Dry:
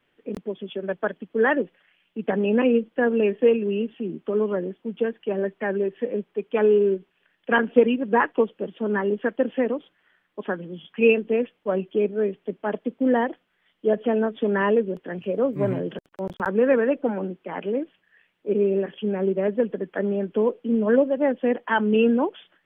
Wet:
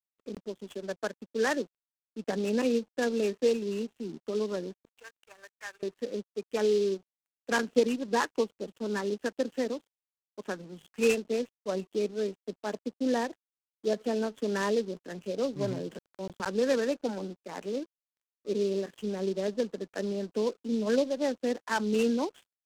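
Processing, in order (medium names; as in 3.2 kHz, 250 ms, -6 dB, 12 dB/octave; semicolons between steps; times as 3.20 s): 4.85–5.83 s: Chebyshev band-pass 1.1–2.7 kHz, order 2; crossover distortion -49.5 dBFS; delay time shaken by noise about 4 kHz, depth 0.036 ms; trim -7.5 dB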